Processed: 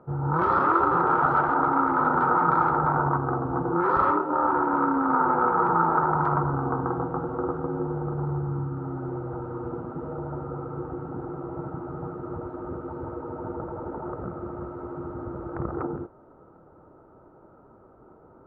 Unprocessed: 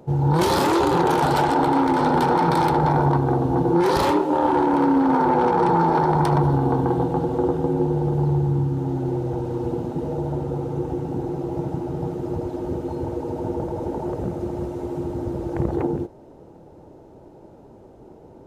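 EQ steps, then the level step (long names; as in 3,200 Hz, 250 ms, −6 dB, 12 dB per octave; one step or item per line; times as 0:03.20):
low-pass with resonance 1,300 Hz, resonance Q 11
notch filter 850 Hz, Q 22
−8.5 dB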